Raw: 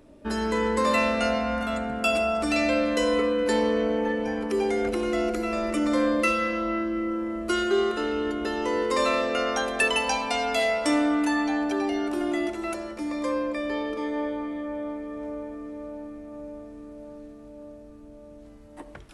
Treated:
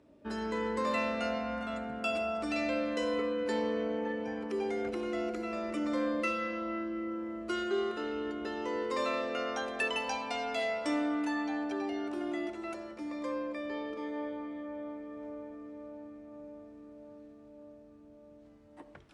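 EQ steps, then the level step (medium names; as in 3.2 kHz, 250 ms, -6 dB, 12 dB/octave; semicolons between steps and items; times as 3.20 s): high-pass 78 Hz 12 dB/octave; distance through air 62 m; -8.5 dB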